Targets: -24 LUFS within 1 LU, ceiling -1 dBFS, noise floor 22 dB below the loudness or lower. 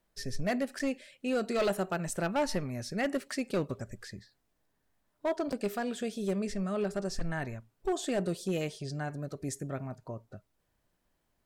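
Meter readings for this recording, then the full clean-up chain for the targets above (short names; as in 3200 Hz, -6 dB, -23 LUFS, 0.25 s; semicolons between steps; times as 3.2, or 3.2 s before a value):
clipped 1.0%; flat tops at -24.0 dBFS; dropouts 2; longest dropout 6.4 ms; loudness -34.0 LUFS; peak -24.0 dBFS; loudness target -24.0 LUFS
-> clip repair -24 dBFS; interpolate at 0.79/5.52, 6.4 ms; gain +10 dB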